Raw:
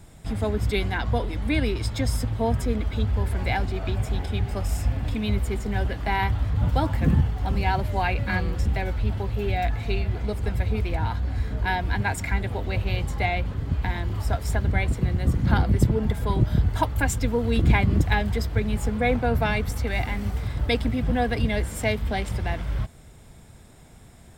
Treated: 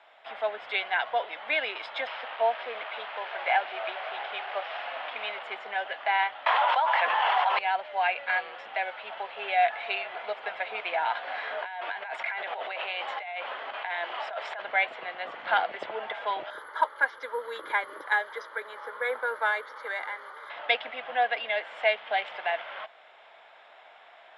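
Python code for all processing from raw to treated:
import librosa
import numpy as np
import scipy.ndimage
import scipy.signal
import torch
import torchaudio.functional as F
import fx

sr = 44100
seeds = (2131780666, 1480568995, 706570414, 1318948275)

y = fx.chain(x, sr, fx.delta_mod(bps=32000, step_db=-32.0),
    fx.highpass(hz=270.0, slope=12),
    fx.air_absorb(metres=210.0), at=(2.07, 5.43))
y = fx.chain(y, sr, fx.highpass(hz=620.0, slope=12),
    fx.peak_eq(hz=990.0, db=12.0, octaves=0.32),
    fx.env_flatten(amount_pct=100), at=(6.46, 7.59))
y = fx.chain(y, sr, fx.highpass(hz=260.0, slope=12),
    fx.over_compress(threshold_db=-37.0, ratio=-1.0), at=(11.15, 14.62))
y = fx.chain(y, sr, fx.highpass(hz=91.0, slope=12),
    fx.fixed_phaser(hz=710.0, stages=6),
    fx.resample_bad(factor=4, down='filtered', up='zero_stuff'), at=(16.5, 20.5))
y = scipy.signal.sosfilt(scipy.signal.cheby1(3, 1.0, [640.0, 3200.0], 'bandpass', fs=sr, output='sos'), y)
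y = fx.dynamic_eq(y, sr, hz=1100.0, q=2.4, threshold_db=-45.0, ratio=4.0, max_db=-4)
y = fx.rider(y, sr, range_db=4, speed_s=2.0)
y = y * librosa.db_to_amplitude(3.5)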